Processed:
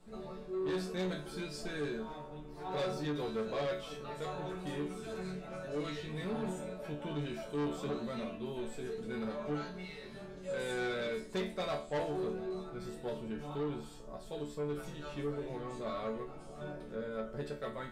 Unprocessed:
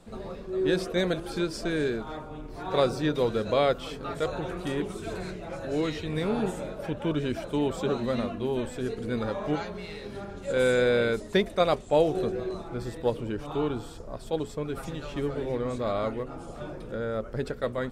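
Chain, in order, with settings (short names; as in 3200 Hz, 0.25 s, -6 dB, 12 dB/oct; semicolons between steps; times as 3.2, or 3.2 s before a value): resonator bank D3 major, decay 0.34 s; soft clip -39 dBFS, distortion -10 dB; gain +8.5 dB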